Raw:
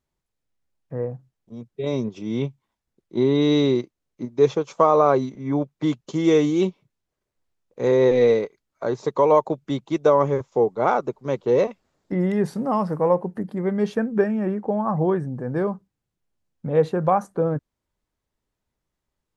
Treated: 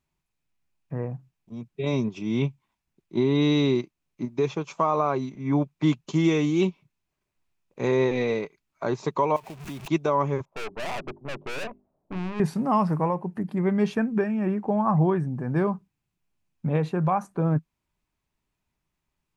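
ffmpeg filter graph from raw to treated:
ffmpeg -i in.wav -filter_complex "[0:a]asettb=1/sr,asplit=3[link_01][link_02][link_03];[link_01]atrim=end=9.364[link_04];[link_02]atrim=start=9.36:end=9.88,asetpts=PTS-STARTPTS,afade=type=in:duration=0.004:curve=qsin,afade=type=out:start_time=0.516:duration=0.004:curve=qsin,aeval=exprs='val(0)+0.5*0.0237*sgn(val(0))':channel_layout=same,acompressor=threshold=-33dB:ratio=6:attack=3.2:release=140:knee=1:detection=peak,acrusher=bits=3:mode=log:mix=0:aa=0.000001[link_05];[link_03]atrim=start=9.876[link_06];[link_04][link_05]acrossfade=duration=0.004:curve1=hsin:curve2=qsin[link_07];[link_07][link_06]acrossfade=duration=0.004:curve1=qsin:curve2=hsin,asettb=1/sr,asplit=3[link_08][link_09][link_10];[link_08]atrim=end=10.454[link_11];[link_09]atrim=start=10.45:end=12.4,asetpts=PTS-STARTPTS,afade=type=in:duration=0.004:curve=qsin,afade=type=out:start_time=1.946:duration=0.004:curve=qsin,lowpass=frequency=630:width_type=q:width=2.5,aeval=exprs='(tanh(31.6*val(0)+0.75)-tanh(0.75))/31.6':channel_layout=same,bandreject=frequency=50:width_type=h:width=6,bandreject=frequency=100:width_type=h:width=6,bandreject=frequency=150:width_type=h:width=6,bandreject=frequency=200:width_type=h:width=6,bandreject=frequency=250:width_type=h:width=6,bandreject=frequency=300:width_type=h:width=6,bandreject=frequency=350:width_type=h:width=6,bandreject=frequency=400:width_type=h:width=6[link_12];[link_10]atrim=start=12.396[link_13];[link_11][link_12]acrossfade=duration=0.004:curve1=hsin:curve2=qsin[link_14];[link_14][link_13]acrossfade=duration=0.004:curve1=qsin:curve2=hsin,alimiter=limit=-12.5dB:level=0:latency=1:release=439,equalizer=frequency=160:width_type=o:width=0.33:gain=5,equalizer=frequency=500:width_type=o:width=0.33:gain=-9,equalizer=frequency=1000:width_type=o:width=0.33:gain=3,equalizer=frequency=2500:width_type=o:width=0.33:gain=8" out.wav

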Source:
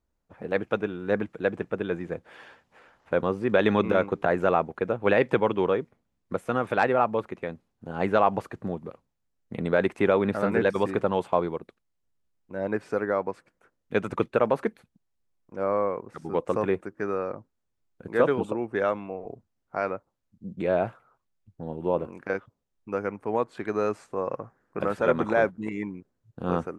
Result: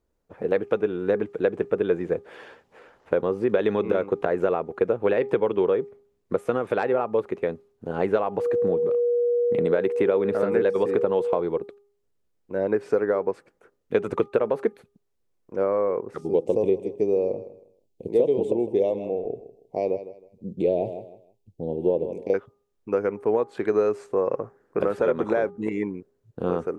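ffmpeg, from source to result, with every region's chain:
ffmpeg -i in.wav -filter_complex "[0:a]asettb=1/sr,asplit=3[link_01][link_02][link_03];[link_01]atrim=end=8.384[link_04];[link_02]atrim=start=8.38:end=11.4,asetpts=PTS-STARTPTS,afade=type=in:duration=0.004:curve=qsin,afade=type=out:start_time=3.016:duration=0.004:curve=qsin,highpass=90,aeval=exprs='val(0)+0.0355*sin(2*PI*480*n/s)':channel_layout=same[link_05];[link_03]atrim=start=11.396[link_06];[link_04][link_05]acrossfade=duration=0.004:curve1=hsin:curve2=qsin[link_07];[link_07][link_06]acrossfade=duration=0.004:curve1=qsin:curve2=hsin,asettb=1/sr,asplit=3[link_08][link_09][link_10];[link_08]atrim=end=16.214[link_11];[link_09]atrim=start=16.21:end=22.34,asetpts=PTS-STARTPTS,afade=type=in:duration=0.004:curve=qsin,afade=type=out:start_time=6.126:duration=0.004:curve=qsin,asuperstop=centerf=1400:order=4:qfactor=0.75,equalizer=frequency=1600:width=4.5:gain=-14,aecho=1:1:158|316|474:0.178|0.0445|0.0111,atrim=end_sample=270333[link_12];[link_10]atrim=start=22.336[link_13];[link_11][link_12]acrossfade=duration=0.004:curve1=hsin:curve2=qsin[link_14];[link_14][link_13]acrossfade=duration=0.004:curve1=qsin:curve2=hsin,acompressor=threshold=-26dB:ratio=6,equalizer=frequency=430:width_type=o:width=0.81:gain=9.5,bandreject=frequency=406.1:width_type=h:width=4,bandreject=frequency=812.2:width_type=h:width=4,bandreject=frequency=1218.3:width_type=h:width=4,volume=2dB" out.wav

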